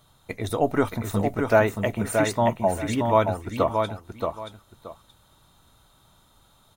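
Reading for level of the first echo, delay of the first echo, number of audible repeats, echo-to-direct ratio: -5.0 dB, 626 ms, 2, -5.0 dB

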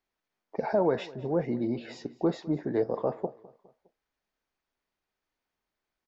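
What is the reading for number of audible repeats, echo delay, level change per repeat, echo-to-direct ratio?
3, 205 ms, -6.5 dB, -20.0 dB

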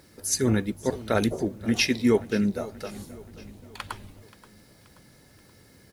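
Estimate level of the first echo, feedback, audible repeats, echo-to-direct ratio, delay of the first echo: -19.0 dB, 51%, 3, -17.5 dB, 529 ms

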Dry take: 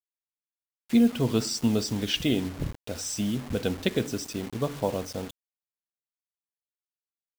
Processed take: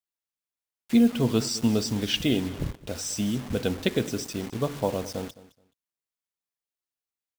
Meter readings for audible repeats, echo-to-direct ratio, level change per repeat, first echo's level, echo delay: 2, -18.5 dB, -14.5 dB, -18.5 dB, 213 ms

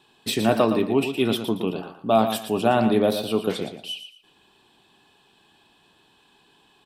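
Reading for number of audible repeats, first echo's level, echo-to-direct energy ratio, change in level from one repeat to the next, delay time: 3, -9.0 dB, -8.5 dB, -12.0 dB, 116 ms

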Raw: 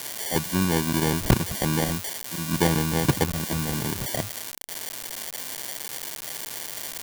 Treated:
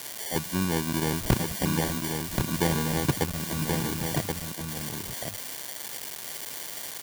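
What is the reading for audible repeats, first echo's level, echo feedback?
1, -4.5 dB, no regular repeats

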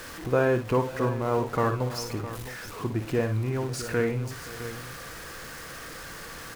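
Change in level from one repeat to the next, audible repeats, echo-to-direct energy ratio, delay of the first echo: no regular repeats, 3, -6.5 dB, 56 ms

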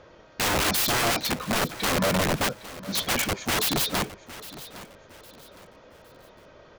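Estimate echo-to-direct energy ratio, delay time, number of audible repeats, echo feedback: -16.0 dB, 810 ms, 2, 34%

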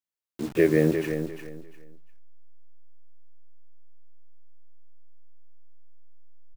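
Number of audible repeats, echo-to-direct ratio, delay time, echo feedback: 3, -8.5 dB, 349 ms, 23%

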